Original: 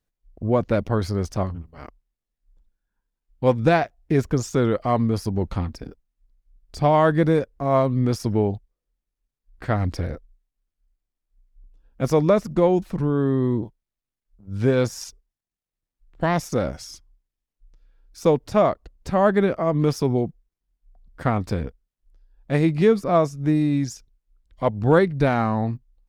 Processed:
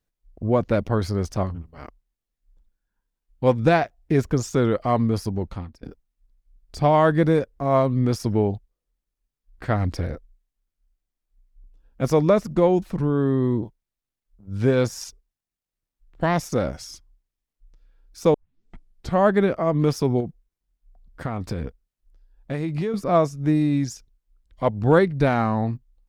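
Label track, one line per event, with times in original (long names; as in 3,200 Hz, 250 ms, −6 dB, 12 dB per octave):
5.190000	5.830000	fade out, to −19 dB
18.340000	18.340000	tape start 0.85 s
20.200000	22.940000	downward compressor, threshold −22 dBFS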